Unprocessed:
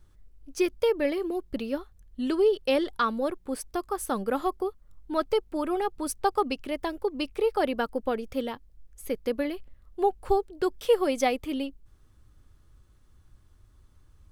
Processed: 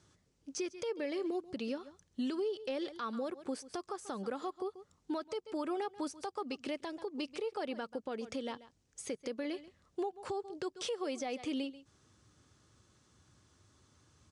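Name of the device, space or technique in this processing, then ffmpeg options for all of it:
podcast mastering chain: -af "highpass=74,highpass=120,lowpass=7.4k,equalizer=f=6.5k:w=1:g=9.5,aecho=1:1:136:0.075,deesser=0.85,acompressor=threshold=-32dB:ratio=2.5,alimiter=level_in=6dB:limit=-24dB:level=0:latency=1:release=193,volume=-6dB,volume=1.5dB" -ar 24000 -c:a libmp3lame -b:a 96k

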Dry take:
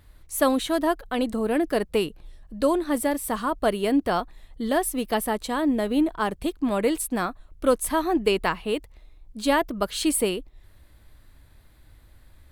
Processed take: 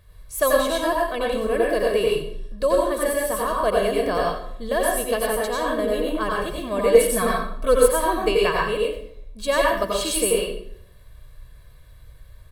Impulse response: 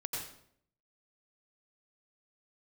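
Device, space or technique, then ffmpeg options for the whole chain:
microphone above a desk: -filter_complex "[0:a]aecho=1:1:1.8:0.7[a];[1:a]atrim=start_sample=2205[b];[a][b]afir=irnorm=-1:irlink=0,asettb=1/sr,asplit=3[c][d][e];[c]atrim=end=6.944[f];[d]atrim=start=6.94:end=7.88,asetpts=PTS-STARTPTS,afade=t=in:d=0.004:c=qsin,afade=t=out:st=0.936:d=0.004:c=qsin,aecho=1:1:4.5:0.96,atrim=end_sample=41454[g];[e]atrim=start=7.876[h];[f][g]acrossfade=d=0.004:c1=hsin:c2=qsin[i];[i][h]acrossfade=d=0.004:c1=qsin:c2=hsin"

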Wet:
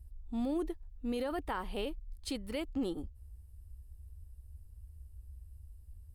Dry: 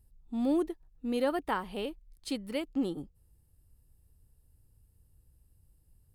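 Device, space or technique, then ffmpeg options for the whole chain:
car stereo with a boomy subwoofer: -af "lowshelf=f=100:t=q:w=3:g=10,alimiter=level_in=3dB:limit=-24dB:level=0:latency=1:release=15,volume=-3dB"

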